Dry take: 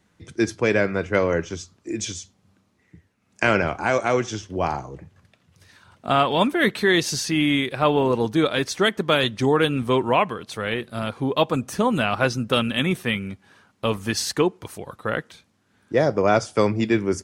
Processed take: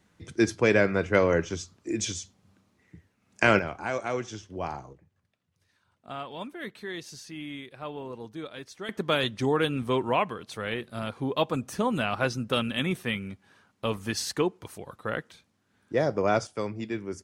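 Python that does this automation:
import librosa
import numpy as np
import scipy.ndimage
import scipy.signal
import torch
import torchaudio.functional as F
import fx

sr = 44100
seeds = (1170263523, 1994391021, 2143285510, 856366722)

y = fx.gain(x, sr, db=fx.steps((0.0, -1.5), (3.59, -9.5), (4.93, -18.5), (8.89, -6.0), (16.47, -12.5)))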